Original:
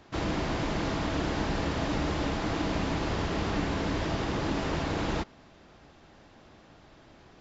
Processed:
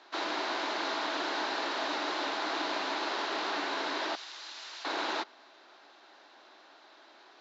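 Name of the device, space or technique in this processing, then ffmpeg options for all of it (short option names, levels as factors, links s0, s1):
phone speaker on a table: -filter_complex "[0:a]highpass=f=190:w=0.5412,highpass=f=190:w=1.3066,asettb=1/sr,asplit=3[s0][s1][s2];[s0]atrim=end=4.154[s3];[s1]atrim=start=4.15:end=4.85,asetpts=PTS-STARTPTS,afade=t=in:d=0.004:c=qsin,afade=t=out:st=0.696:d=0.004:c=qsin,aderivative[s4];[s2]atrim=start=4.846[s5];[s3][s4]acrossfade=d=0.004:c1=hsin:c2=qsin[s6];[s6][s5]acrossfade=d=0.004:c1=qsin:c2=hsin,highpass=f=370:w=0.5412,highpass=f=370:w=1.3066,equalizer=f=480:t=q:w=4:g=-8,equalizer=f=940:t=q:w=4:g=3,equalizer=f=1500:t=q:w=4:g=4,equalizer=f=4000:t=q:w=4:g=8,lowpass=f=6600:w=0.5412,lowpass=f=6600:w=1.3066"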